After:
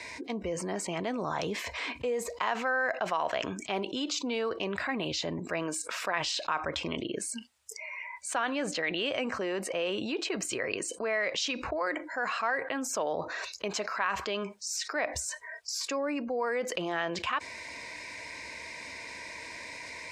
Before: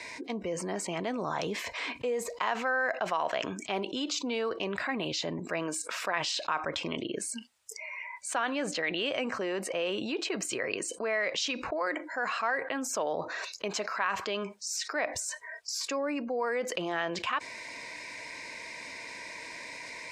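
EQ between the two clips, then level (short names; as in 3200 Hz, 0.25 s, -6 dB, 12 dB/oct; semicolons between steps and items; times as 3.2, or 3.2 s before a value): bell 69 Hz +13.5 dB 0.69 oct; 0.0 dB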